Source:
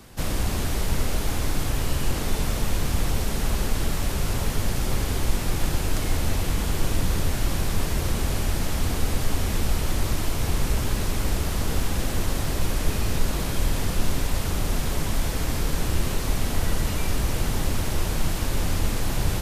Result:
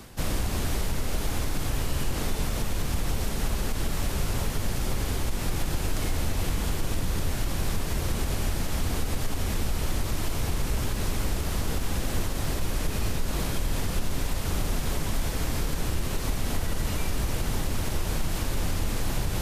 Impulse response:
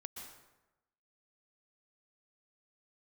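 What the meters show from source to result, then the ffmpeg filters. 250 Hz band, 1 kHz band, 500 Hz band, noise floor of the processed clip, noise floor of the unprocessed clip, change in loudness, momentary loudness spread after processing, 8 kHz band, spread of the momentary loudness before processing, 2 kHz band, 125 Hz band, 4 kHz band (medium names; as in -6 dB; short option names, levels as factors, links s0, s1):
-3.0 dB, -3.0 dB, -3.0 dB, -30 dBFS, -27 dBFS, -3.5 dB, 1 LU, -3.0 dB, 1 LU, -3.0 dB, -3.5 dB, -3.0 dB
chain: -af "areverse,acompressor=mode=upward:threshold=0.0631:ratio=2.5,areverse,alimiter=limit=0.168:level=0:latency=1:release=93,volume=0.841"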